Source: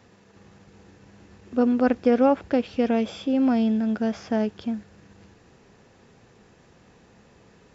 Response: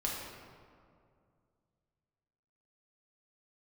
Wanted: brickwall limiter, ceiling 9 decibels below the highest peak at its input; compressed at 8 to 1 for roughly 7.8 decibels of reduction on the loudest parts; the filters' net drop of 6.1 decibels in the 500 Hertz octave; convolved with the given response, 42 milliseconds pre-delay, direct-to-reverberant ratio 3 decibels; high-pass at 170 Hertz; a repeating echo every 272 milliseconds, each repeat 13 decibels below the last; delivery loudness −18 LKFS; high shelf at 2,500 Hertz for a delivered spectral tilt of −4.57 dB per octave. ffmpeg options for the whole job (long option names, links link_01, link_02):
-filter_complex "[0:a]highpass=170,equalizer=frequency=500:width_type=o:gain=-7,highshelf=frequency=2500:gain=8,acompressor=threshold=-26dB:ratio=8,alimiter=level_in=2.5dB:limit=-24dB:level=0:latency=1,volume=-2.5dB,aecho=1:1:272|544|816:0.224|0.0493|0.0108,asplit=2[link_01][link_02];[1:a]atrim=start_sample=2205,adelay=42[link_03];[link_02][link_03]afir=irnorm=-1:irlink=0,volume=-7.5dB[link_04];[link_01][link_04]amix=inputs=2:normalize=0,volume=15dB"